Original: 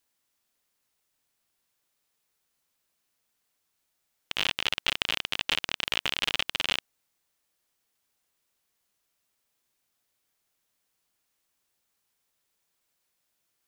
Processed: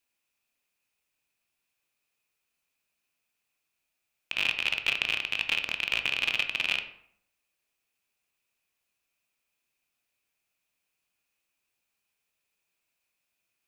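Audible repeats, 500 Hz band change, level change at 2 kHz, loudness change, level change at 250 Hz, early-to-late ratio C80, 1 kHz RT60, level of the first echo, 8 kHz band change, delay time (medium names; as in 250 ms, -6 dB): no echo, -4.5 dB, +3.5 dB, +1.0 dB, -4.5 dB, 13.5 dB, 0.65 s, no echo, -5.5 dB, no echo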